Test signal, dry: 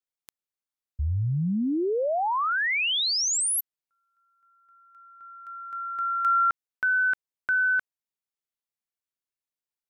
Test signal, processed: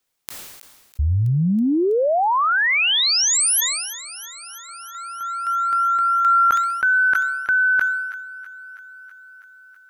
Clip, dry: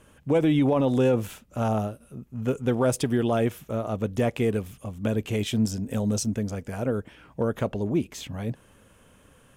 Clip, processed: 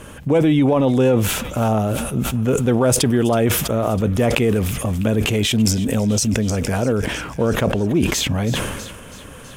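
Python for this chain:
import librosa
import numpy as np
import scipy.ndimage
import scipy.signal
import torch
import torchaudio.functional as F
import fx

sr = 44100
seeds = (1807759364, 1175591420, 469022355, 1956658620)

p1 = fx.over_compress(x, sr, threshold_db=-36.0, ratio=-1.0)
p2 = x + F.gain(torch.from_numpy(p1), 1.0).numpy()
p3 = fx.echo_wet_highpass(p2, sr, ms=325, feedback_pct=72, hz=1500.0, wet_db=-16.5)
p4 = fx.sustainer(p3, sr, db_per_s=40.0)
y = F.gain(torch.from_numpy(p4), 5.0).numpy()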